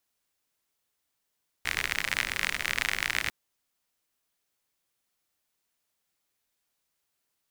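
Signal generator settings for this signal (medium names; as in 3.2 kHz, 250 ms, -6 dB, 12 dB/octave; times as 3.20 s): rain from filtered ticks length 1.65 s, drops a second 56, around 2 kHz, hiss -12 dB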